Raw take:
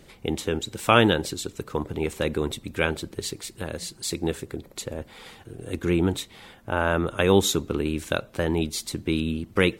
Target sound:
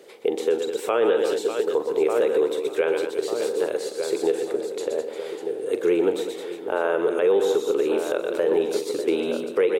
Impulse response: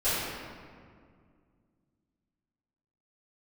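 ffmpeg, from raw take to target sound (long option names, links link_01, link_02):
-filter_complex "[0:a]asettb=1/sr,asplit=3[link_01][link_02][link_03];[link_01]atrim=end=4.204[link_04];[link_02]atrim=start=4.2:end=4.95,asetpts=PTS-STARTPTS,afade=type=in:duration=0.004:curve=qsin,afade=type=out:start_time=0.746:duration=0.004:curve=qsin,lowpass=12000[link_05];[link_03]atrim=start=4.946[link_06];[link_04][link_05]acrossfade=duration=0.004:curve1=hsin:curve2=qsin[link_07];[link_07][link_06]acrossfade=duration=0.004:curve1=qsin:curve2=hsin,asplit=2[link_08][link_09];[link_09]aecho=0:1:42|121|125|205|348|594:0.211|0.299|0.1|0.188|0.1|0.133[link_10];[link_08][link_10]amix=inputs=2:normalize=0,acrossover=split=2600[link_11][link_12];[link_12]acompressor=threshold=-35dB:ratio=4:attack=1:release=60[link_13];[link_11][link_13]amix=inputs=2:normalize=0,highpass=frequency=440:width_type=q:width=4.9,asplit=2[link_14][link_15];[link_15]adelay=1195,lowpass=frequency=1000:poles=1,volume=-10dB,asplit=2[link_16][link_17];[link_17]adelay=1195,lowpass=frequency=1000:poles=1,volume=0.53,asplit=2[link_18][link_19];[link_19]adelay=1195,lowpass=frequency=1000:poles=1,volume=0.53,asplit=2[link_20][link_21];[link_21]adelay=1195,lowpass=frequency=1000:poles=1,volume=0.53,asplit=2[link_22][link_23];[link_23]adelay=1195,lowpass=frequency=1000:poles=1,volume=0.53,asplit=2[link_24][link_25];[link_25]adelay=1195,lowpass=frequency=1000:poles=1,volume=0.53[link_26];[link_16][link_18][link_20][link_22][link_24][link_26]amix=inputs=6:normalize=0[link_27];[link_14][link_27]amix=inputs=2:normalize=0,alimiter=limit=-12dB:level=0:latency=1:release=142"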